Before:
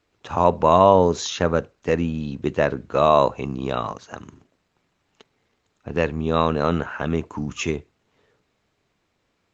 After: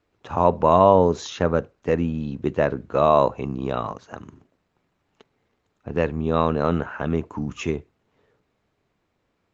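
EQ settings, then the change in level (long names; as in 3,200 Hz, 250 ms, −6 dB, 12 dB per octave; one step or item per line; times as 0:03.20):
high-shelf EQ 2,300 Hz −8.5 dB
0.0 dB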